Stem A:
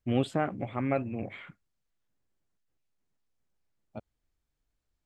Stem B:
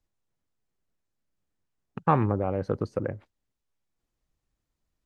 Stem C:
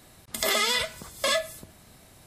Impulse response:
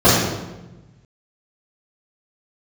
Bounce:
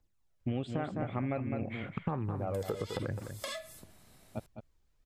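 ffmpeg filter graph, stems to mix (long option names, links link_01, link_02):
-filter_complex "[0:a]lowpass=7100,lowshelf=frequency=120:gain=8,adelay=400,volume=1dB,asplit=2[link_01][link_02];[link_02]volume=-8.5dB[link_03];[1:a]acompressor=threshold=-28dB:ratio=3,aphaser=in_gain=1:out_gain=1:delay=2.5:decay=0.56:speed=0.93:type=triangular,volume=-0.5dB,asplit=3[link_04][link_05][link_06];[link_05]volume=-10dB[link_07];[2:a]acompressor=threshold=-29dB:ratio=5,adelay=2200,volume=-8dB[link_08];[link_06]apad=whole_len=196763[link_09];[link_08][link_09]sidechaincompress=threshold=-36dB:ratio=8:attack=8.1:release=248[link_10];[link_03][link_07]amix=inputs=2:normalize=0,aecho=0:1:208:1[link_11];[link_01][link_04][link_10][link_11]amix=inputs=4:normalize=0,acompressor=threshold=-30dB:ratio=10"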